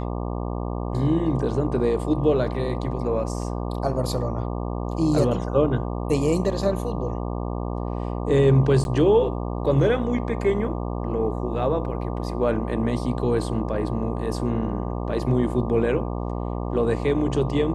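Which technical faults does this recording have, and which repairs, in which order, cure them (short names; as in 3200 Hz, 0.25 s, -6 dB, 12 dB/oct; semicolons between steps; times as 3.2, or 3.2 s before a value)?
buzz 60 Hz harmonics 20 -28 dBFS
8.84–8.85 gap 11 ms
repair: de-hum 60 Hz, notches 20; interpolate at 8.84, 11 ms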